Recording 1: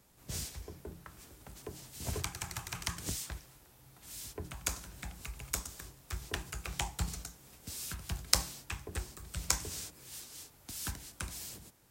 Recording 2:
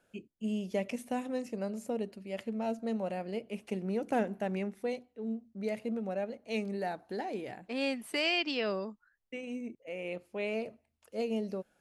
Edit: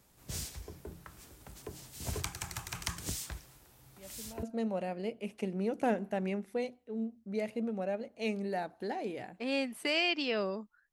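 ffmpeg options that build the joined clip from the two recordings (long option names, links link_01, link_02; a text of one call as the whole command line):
ffmpeg -i cue0.wav -i cue1.wav -filter_complex "[1:a]asplit=2[link_01][link_02];[0:a]apad=whole_dur=10.92,atrim=end=10.92,atrim=end=4.432[link_03];[link_02]atrim=start=2.718:end=9.21[link_04];[link_01]atrim=start=2.26:end=2.72,asetpts=PTS-STARTPTS,volume=-14.5dB,afade=type=in:duration=0.004:curve=hsin,afade=type=out:start_time=0.456:duration=0.004:curve=hsin,adelay=175077S[link_05];[link_03][link_04]acrossfade=duration=0.004:curve1=hsin:curve2=hsin[link_06];[link_06][link_05]amix=inputs=2:normalize=0" out.wav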